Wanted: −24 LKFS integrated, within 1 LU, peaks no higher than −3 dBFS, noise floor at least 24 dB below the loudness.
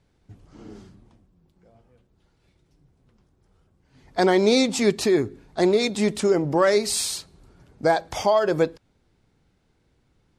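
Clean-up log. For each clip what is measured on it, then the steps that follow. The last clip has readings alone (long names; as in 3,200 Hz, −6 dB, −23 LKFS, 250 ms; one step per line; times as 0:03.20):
integrated loudness −22.0 LKFS; sample peak −7.0 dBFS; target loudness −24.0 LKFS
→ level −2 dB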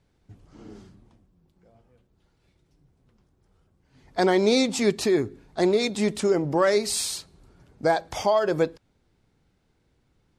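integrated loudness −24.0 LKFS; sample peak −9.0 dBFS; background noise floor −69 dBFS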